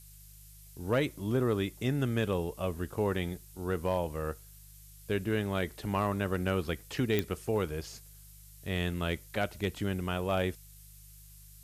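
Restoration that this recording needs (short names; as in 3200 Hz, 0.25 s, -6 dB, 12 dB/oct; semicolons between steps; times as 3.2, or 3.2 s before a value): clip repair -19.5 dBFS; de-click; de-hum 50.8 Hz, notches 3; noise print and reduce 25 dB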